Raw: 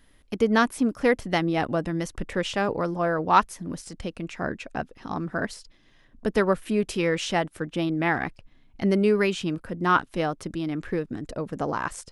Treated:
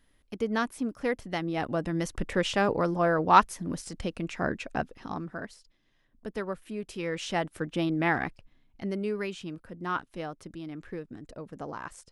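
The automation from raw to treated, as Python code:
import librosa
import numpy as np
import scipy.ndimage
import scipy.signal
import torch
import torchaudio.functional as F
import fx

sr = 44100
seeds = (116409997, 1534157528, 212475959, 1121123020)

y = fx.gain(x, sr, db=fx.line((1.36, -8.0), (2.13, 0.0), (4.92, 0.0), (5.5, -12.0), (6.82, -12.0), (7.56, -2.0), (8.19, -2.0), (8.89, -10.5)))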